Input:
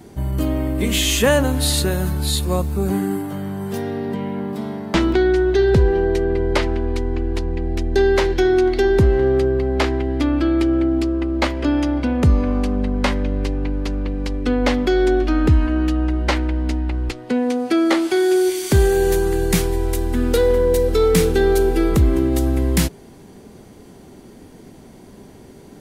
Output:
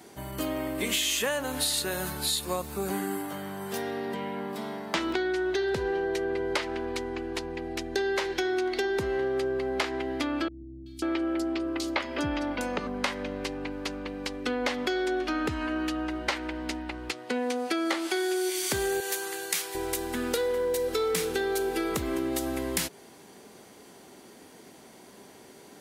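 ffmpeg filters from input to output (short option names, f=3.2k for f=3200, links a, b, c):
-filter_complex "[0:a]asettb=1/sr,asplit=3[a][b][c];[a]atrim=end=10.484[d];[b]atrim=start=10.48:end=12.87,asetpts=PTS-STARTPTS,afade=t=in:d=0.004:c=qsin,afade=t=out:st=2.386:d=0.004:c=qsin,acrossover=split=190|4500[e][f][g];[g]adelay=380[h];[f]adelay=540[i];[e][i][h]amix=inputs=3:normalize=0,atrim=end_sample=105399[j];[c]atrim=start=12.866[k];[d][j]acrossfade=d=0.004:c1=hsin:c2=qsin[l];[l][k]acrossfade=d=0.004:c1=qsin:c2=hsin,asettb=1/sr,asplit=3[m][n][o];[m]atrim=end=19.004[p];[n]atrim=start=19:end=19.75,asetpts=PTS-STARTPTS,afade=t=in:d=0.004:c=qsin,afade=t=out:st=0.746:d=0.004:c=qsin,highpass=f=1.3k:p=1[q];[o]atrim=start=19.746[r];[p][q]acrossfade=d=0.004:c1=hsin:c2=qsin[s];[s][r]acrossfade=d=0.004:c1=qsin:c2=hsin,highpass=f=850:p=1,acompressor=threshold=-25dB:ratio=6"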